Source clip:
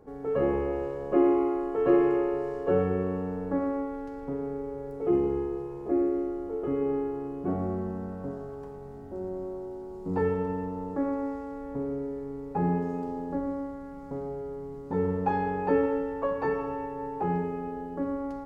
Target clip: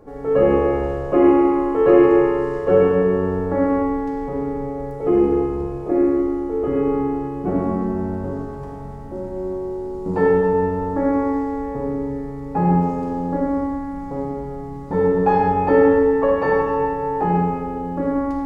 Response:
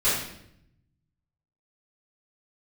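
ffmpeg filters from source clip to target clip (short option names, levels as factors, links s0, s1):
-filter_complex "[0:a]asplit=2[s0][s1];[1:a]atrim=start_sample=2205,afade=t=out:st=0.37:d=0.01,atrim=end_sample=16758,asetrate=22050,aresample=44100[s2];[s1][s2]afir=irnorm=-1:irlink=0,volume=0.126[s3];[s0][s3]amix=inputs=2:normalize=0,volume=2.11"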